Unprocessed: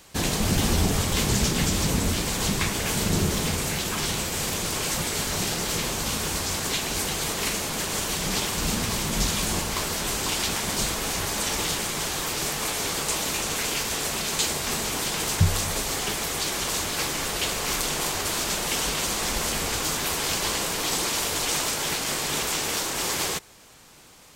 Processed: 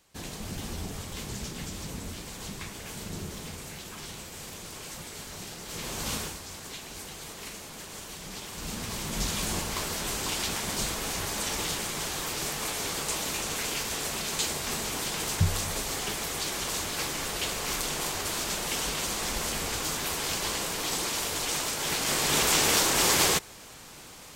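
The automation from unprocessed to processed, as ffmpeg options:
-af "volume=14dB,afade=t=in:st=5.65:d=0.49:silence=0.316228,afade=t=out:st=6.14:d=0.23:silence=0.316228,afade=t=in:st=8.42:d=1.03:silence=0.334965,afade=t=in:st=21.76:d=0.85:silence=0.375837"

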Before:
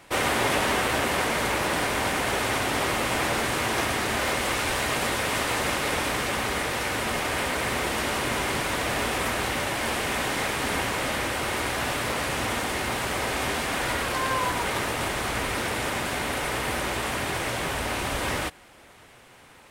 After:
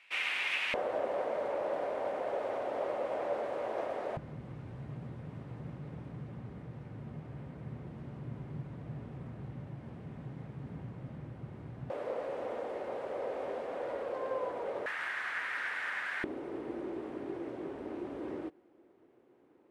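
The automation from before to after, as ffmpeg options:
-af "asetnsamples=n=441:p=0,asendcmd='0.74 bandpass f 570;4.17 bandpass f 140;11.9 bandpass f 520;14.86 bandpass f 1700;16.24 bandpass f 340',bandpass=f=2.5k:t=q:w=4:csg=0"

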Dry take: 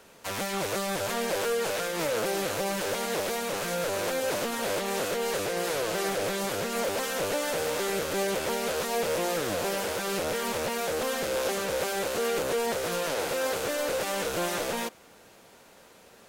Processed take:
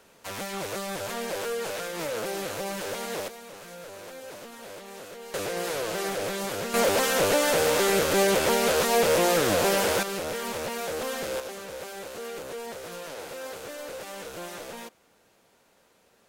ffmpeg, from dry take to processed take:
-af "asetnsamples=n=441:p=0,asendcmd='3.28 volume volume -13dB;5.34 volume volume -1dB;6.74 volume volume 6.5dB;10.03 volume volume -2dB;11.4 volume volume -9dB',volume=-3dB"

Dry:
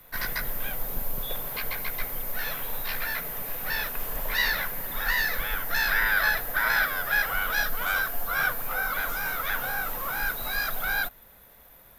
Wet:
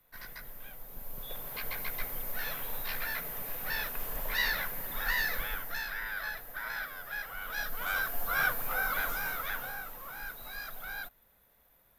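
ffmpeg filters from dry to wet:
-af "volume=6dB,afade=t=in:st=0.89:d=0.92:silence=0.298538,afade=t=out:st=5.38:d=0.52:silence=0.354813,afade=t=in:st=7.36:d=0.95:silence=0.281838,afade=t=out:st=9:d=0.91:silence=0.316228"

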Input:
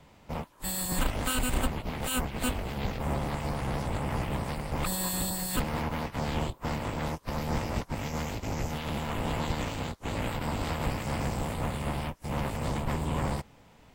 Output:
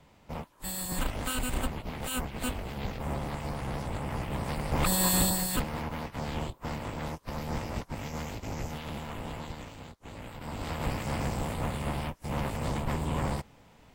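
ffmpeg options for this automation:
-af "volume=17.5dB,afade=t=in:st=4.28:d=0.89:silence=0.334965,afade=t=out:st=5.17:d=0.51:silence=0.316228,afade=t=out:st=8.65:d=1.04:silence=0.398107,afade=t=in:st=10.33:d=0.6:silence=0.281838"

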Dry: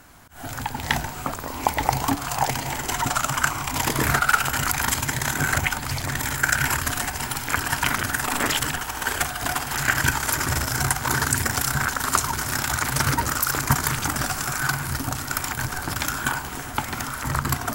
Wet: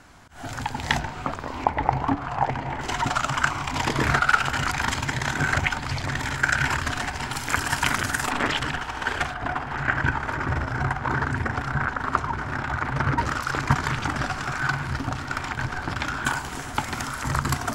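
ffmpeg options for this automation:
-af "asetnsamples=n=441:p=0,asendcmd='0.99 lowpass f 3800;1.64 lowpass f 1800;2.81 lowpass f 4700;7.33 lowpass f 9000;8.3 lowpass f 3600;9.34 lowpass f 1800;13.18 lowpass f 3500;16.25 lowpass f 8300',lowpass=6.8k"

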